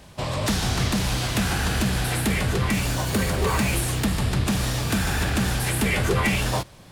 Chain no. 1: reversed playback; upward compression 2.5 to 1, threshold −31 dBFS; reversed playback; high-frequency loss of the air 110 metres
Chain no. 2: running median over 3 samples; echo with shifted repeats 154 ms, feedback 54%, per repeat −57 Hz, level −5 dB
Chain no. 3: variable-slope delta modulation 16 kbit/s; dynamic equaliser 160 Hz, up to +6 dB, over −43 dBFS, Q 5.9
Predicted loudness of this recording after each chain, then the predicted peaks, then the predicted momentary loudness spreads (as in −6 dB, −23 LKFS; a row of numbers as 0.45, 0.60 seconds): −24.5, −22.5, −25.0 LKFS; −13.5, −9.5, −12.5 dBFS; 3, 3, 3 LU